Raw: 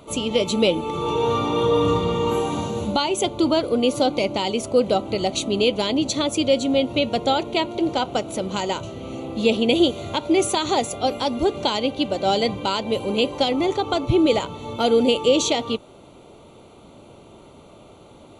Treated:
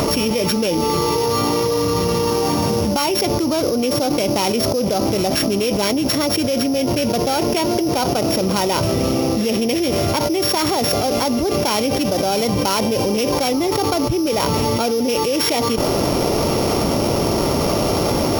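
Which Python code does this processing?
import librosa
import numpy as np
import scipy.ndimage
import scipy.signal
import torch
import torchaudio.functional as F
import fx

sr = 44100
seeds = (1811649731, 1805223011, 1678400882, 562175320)

y = np.r_[np.sort(x[:len(x) // 8 * 8].reshape(-1, 8), axis=1).ravel(), x[len(x) // 8 * 8:]]
y = fx.env_flatten(y, sr, amount_pct=100)
y = F.gain(torch.from_numpy(y), -5.5).numpy()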